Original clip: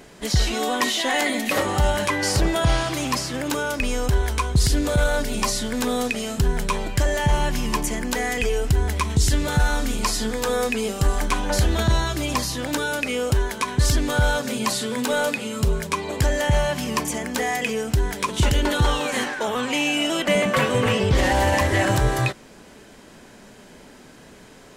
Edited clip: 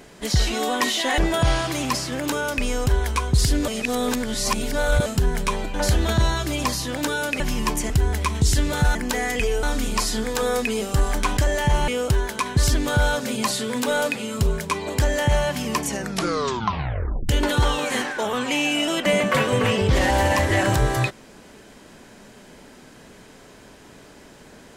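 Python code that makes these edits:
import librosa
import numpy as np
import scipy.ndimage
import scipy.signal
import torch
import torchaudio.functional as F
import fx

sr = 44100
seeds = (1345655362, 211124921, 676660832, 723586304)

y = fx.edit(x, sr, fx.cut(start_s=1.18, length_s=1.22),
    fx.reverse_span(start_s=4.9, length_s=1.38),
    fx.swap(start_s=6.96, length_s=0.51, other_s=11.44, other_length_s=1.66),
    fx.move(start_s=7.97, length_s=0.68, to_s=9.7),
    fx.tape_stop(start_s=17.04, length_s=1.47), tone=tone)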